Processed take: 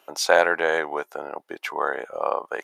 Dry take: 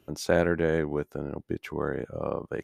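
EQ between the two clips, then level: dynamic EQ 4300 Hz, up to +4 dB, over -45 dBFS, Q 0.88; resonant high-pass 790 Hz, resonance Q 1.8; +8.0 dB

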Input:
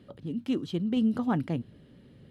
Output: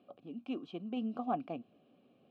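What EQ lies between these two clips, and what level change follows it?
vowel filter a; bell 250 Hz +10 dB 1.3 oct; bell 3700 Hz +3.5 dB 1.9 oct; +3.0 dB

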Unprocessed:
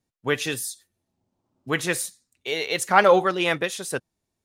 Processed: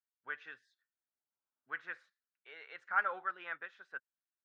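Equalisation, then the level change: band-pass 1500 Hz, Q 5.2; air absorption 190 m; -6.5 dB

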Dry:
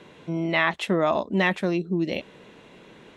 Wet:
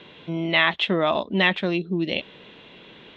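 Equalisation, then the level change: synth low-pass 3400 Hz, resonance Q 3.3; 0.0 dB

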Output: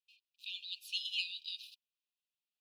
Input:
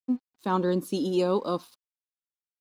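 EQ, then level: brick-wall FIR high-pass 2400 Hz; air absorption 390 m; high shelf 3300 Hz +11.5 dB; +9.0 dB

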